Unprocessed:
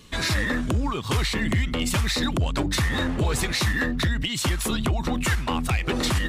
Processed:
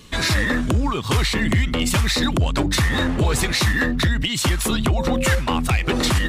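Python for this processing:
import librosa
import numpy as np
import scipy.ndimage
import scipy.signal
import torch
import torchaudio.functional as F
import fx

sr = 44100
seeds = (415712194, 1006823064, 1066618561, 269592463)

y = fx.dmg_tone(x, sr, hz=530.0, level_db=-29.0, at=(4.96, 5.38), fade=0.02)
y = y * 10.0 ** (4.5 / 20.0)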